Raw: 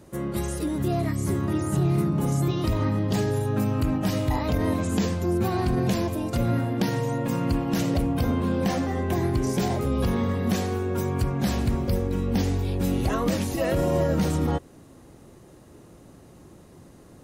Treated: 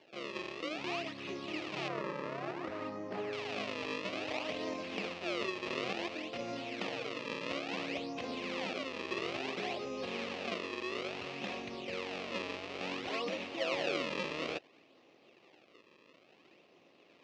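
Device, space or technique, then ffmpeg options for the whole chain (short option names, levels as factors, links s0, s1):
circuit-bent sampling toy: -filter_complex "[0:a]acrusher=samples=34:mix=1:aa=0.000001:lfo=1:lforange=54.4:lforate=0.58,highpass=460,equalizer=f=910:t=q:w=4:g=-5,equalizer=f=1500:t=q:w=4:g=-9,equalizer=f=2600:t=q:w=4:g=8,lowpass=f=5000:w=0.5412,lowpass=f=5000:w=1.3066,asettb=1/sr,asplit=3[s0][s1][s2];[s0]atrim=end=1.884[s3];[s1]atrim=start=1.88:end=3.33,asetpts=PTS-STARTPTS,afade=t=in:d=0.004:c=qsin,afade=t=out:st=1.446:d=0.004:c=qsin,highshelf=f=2100:t=q:w=1.5:g=-9.5[s4];[s2]atrim=start=3.326[s5];[s3][s4]acrossfade=d=0.004:c1=hsin:c2=qsin[s6];[s6][s5]acrossfade=d=0.004:c1=qsin:c2=hsin,volume=0.447"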